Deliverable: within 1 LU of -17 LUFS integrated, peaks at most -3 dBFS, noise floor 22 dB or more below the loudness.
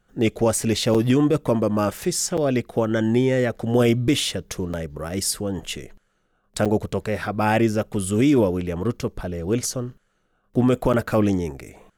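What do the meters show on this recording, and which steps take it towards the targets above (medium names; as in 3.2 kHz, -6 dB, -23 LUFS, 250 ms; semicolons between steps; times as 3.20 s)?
dropouts 5; longest dropout 6.6 ms; loudness -22.0 LUFS; peak level -9.5 dBFS; loudness target -17.0 LUFS
-> interpolate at 0.94/2.37/4.73/6.65/10.93 s, 6.6 ms; trim +5 dB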